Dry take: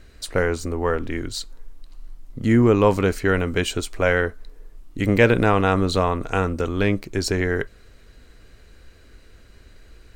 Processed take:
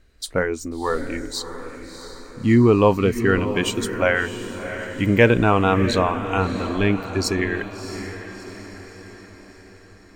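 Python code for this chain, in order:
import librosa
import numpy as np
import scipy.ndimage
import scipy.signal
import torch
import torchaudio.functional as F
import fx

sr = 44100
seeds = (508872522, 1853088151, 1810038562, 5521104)

p1 = fx.noise_reduce_blind(x, sr, reduce_db=11)
p2 = p1 + fx.echo_diffused(p1, sr, ms=665, feedback_pct=52, wet_db=-10.5, dry=0)
y = p2 * librosa.db_to_amplitude(1.5)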